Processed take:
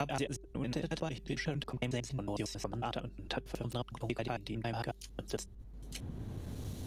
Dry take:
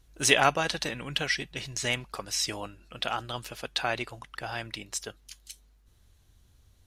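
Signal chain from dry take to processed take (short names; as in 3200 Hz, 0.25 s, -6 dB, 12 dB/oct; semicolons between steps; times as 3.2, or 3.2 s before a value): slices in reverse order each 91 ms, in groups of 6; EQ curve 270 Hz 0 dB, 820 Hz -9 dB, 1400 Hz -16 dB; in parallel at -2 dB: compressor, threshold -34 dBFS, peak gain reduction 9.5 dB; on the sum: de-hum 196.6 Hz, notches 2; three-band squash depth 100%; gain -2.5 dB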